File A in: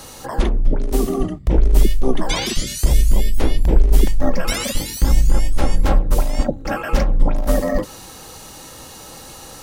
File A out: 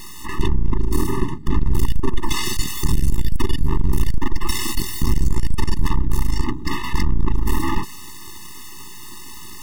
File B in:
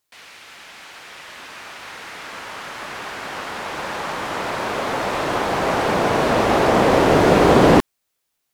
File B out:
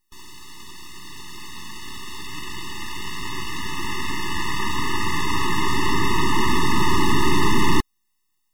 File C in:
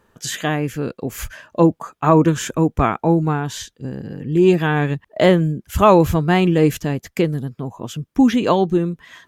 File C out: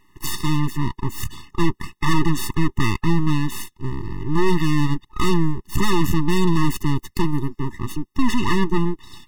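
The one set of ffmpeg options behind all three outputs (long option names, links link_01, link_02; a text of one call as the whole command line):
ffmpeg -i in.wav -af "aeval=exprs='(tanh(7.94*val(0)+0.5)-tanh(0.5))/7.94':channel_layout=same,aeval=exprs='abs(val(0))':channel_layout=same,afftfilt=real='re*eq(mod(floor(b*sr/1024/430),2),0)':imag='im*eq(mod(floor(b*sr/1024/430),2),0)':win_size=1024:overlap=0.75,volume=7.5dB" out.wav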